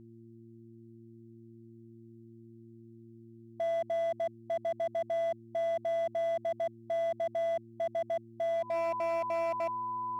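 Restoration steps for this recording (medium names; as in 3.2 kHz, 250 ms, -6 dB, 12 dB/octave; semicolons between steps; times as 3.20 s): clip repair -28.5 dBFS; de-hum 114.6 Hz, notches 3; band-stop 1 kHz, Q 30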